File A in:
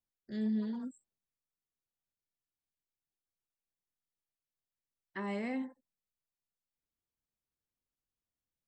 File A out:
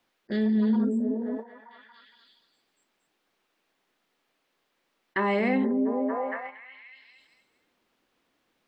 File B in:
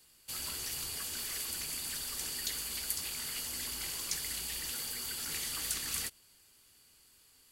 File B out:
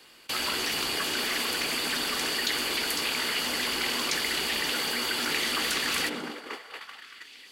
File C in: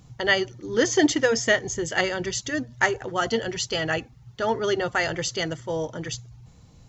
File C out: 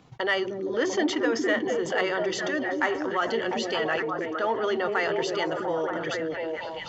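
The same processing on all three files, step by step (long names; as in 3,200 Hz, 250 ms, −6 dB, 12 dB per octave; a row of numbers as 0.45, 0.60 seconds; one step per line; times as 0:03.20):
three-way crossover with the lows and the highs turned down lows −18 dB, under 220 Hz, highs −17 dB, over 4,000 Hz
on a send: echo through a band-pass that steps 232 ms, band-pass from 230 Hz, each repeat 0.7 octaves, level 0 dB
on the sum: dynamic equaliser 1,100 Hz, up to +7 dB, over −46 dBFS, Q 3.3
in parallel at −12 dB: soft clipping −20 dBFS
on the sum: noise gate −52 dBFS, range −25 dB
envelope flattener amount 50%
loudness normalisation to −27 LKFS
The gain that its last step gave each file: +9.0, +12.5, −8.0 decibels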